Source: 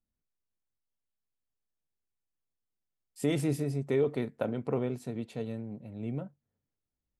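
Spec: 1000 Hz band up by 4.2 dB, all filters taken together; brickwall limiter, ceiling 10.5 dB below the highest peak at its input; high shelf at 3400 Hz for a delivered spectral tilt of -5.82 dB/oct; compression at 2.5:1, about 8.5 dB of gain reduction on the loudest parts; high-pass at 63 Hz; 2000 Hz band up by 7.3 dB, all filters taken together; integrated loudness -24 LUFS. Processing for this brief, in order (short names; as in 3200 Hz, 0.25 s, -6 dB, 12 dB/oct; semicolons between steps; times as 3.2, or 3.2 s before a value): HPF 63 Hz; bell 1000 Hz +4 dB; bell 2000 Hz +6 dB; high shelf 3400 Hz +5 dB; compressor 2.5:1, threshold -35 dBFS; gain +16.5 dB; limiter -12.5 dBFS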